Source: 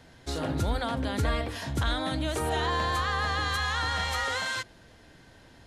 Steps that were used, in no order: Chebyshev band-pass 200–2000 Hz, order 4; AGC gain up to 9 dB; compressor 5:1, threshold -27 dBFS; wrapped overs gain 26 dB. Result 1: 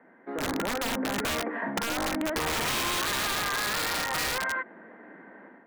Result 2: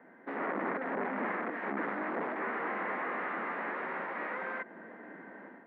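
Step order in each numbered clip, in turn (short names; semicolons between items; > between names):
Chebyshev band-pass > wrapped overs > AGC > compressor; AGC > compressor > wrapped overs > Chebyshev band-pass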